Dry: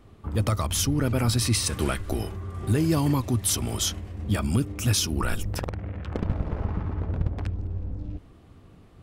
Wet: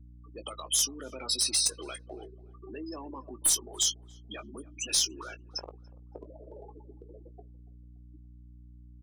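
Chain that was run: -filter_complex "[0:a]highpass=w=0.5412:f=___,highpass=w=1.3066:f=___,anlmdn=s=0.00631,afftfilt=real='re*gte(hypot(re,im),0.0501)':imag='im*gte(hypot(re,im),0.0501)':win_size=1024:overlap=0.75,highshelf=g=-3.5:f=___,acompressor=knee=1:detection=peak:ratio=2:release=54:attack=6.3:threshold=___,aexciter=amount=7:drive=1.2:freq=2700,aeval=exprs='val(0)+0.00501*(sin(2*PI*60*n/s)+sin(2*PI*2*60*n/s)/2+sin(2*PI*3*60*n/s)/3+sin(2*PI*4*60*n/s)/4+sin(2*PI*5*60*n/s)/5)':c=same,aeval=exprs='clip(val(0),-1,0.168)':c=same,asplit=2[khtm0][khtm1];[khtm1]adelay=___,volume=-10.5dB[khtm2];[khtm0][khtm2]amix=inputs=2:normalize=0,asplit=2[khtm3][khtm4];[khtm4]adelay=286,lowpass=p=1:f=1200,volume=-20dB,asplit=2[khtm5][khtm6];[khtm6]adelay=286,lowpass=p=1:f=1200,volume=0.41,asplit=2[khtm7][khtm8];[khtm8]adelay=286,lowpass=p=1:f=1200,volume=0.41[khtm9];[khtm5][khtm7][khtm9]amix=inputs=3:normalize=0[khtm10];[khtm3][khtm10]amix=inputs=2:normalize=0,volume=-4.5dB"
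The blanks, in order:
340, 340, 5600, -41dB, 19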